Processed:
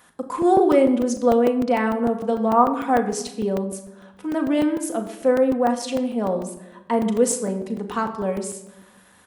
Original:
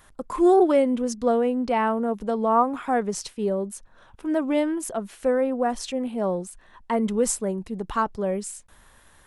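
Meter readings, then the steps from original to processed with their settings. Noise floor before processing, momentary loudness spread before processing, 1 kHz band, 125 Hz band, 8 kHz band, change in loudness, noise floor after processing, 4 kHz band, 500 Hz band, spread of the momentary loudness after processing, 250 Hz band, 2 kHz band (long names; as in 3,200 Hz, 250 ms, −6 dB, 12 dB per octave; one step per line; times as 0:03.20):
−55 dBFS, 12 LU, +2.5 dB, +3.5 dB, +2.0 dB, +3.0 dB, −53 dBFS, +2.5 dB, +2.5 dB, 11 LU, +3.5 dB, +3.0 dB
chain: high-pass filter 140 Hz 12 dB per octave
double-tracking delay 37 ms −12 dB
rectangular room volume 3,900 cubic metres, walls furnished, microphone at 1.9 metres
regular buffer underruns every 0.15 s, samples 128, zero, from 0:00.42
level +1 dB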